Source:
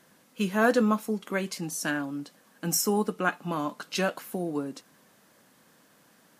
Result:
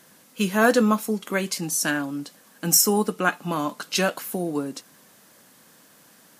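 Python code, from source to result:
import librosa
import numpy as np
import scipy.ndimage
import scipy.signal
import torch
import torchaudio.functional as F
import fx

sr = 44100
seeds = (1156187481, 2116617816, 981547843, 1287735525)

y = fx.high_shelf(x, sr, hz=4000.0, db=7.0)
y = F.gain(torch.from_numpy(y), 4.0).numpy()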